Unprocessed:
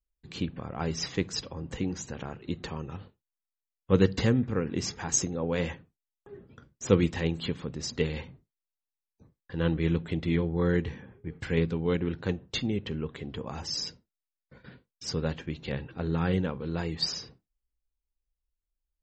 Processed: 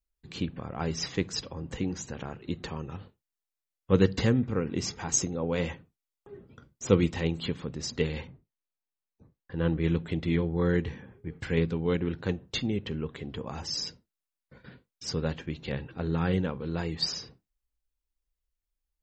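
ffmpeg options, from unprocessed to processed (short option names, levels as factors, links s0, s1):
-filter_complex "[0:a]asettb=1/sr,asplit=3[s0][s1][s2];[s0]atrim=end=4.404[s3];[s1]atrim=start=4.4:end=7.44,asetpts=PTS-STARTPTS,afade=t=in:d=0.004:c=qsin,afade=t=out:st=3.036:d=0.004:c=qsin,bandreject=f=1700:w=12[s4];[s2]atrim=start=7.436[s5];[s3][s4]acrossfade=d=0.004:c1=hsin:c2=qsin[s6];[s6][s5]acrossfade=d=0.004:c1=qsin:c2=hsin,asettb=1/sr,asplit=3[s7][s8][s9];[s7]atrim=end=8.274[s10];[s8]atrim=start=8.27:end=9.84,asetpts=PTS-STARTPTS,afade=t=in:d=0.004:c=qsin,afade=t=out:st=1.566:d=0.004:c=qsin,aemphasis=mode=reproduction:type=75kf[s11];[s9]atrim=start=9.836[s12];[s10][s11]acrossfade=d=0.004:c1=hsin:c2=qsin[s13];[s13][s12]acrossfade=d=0.004:c1=qsin:c2=hsin"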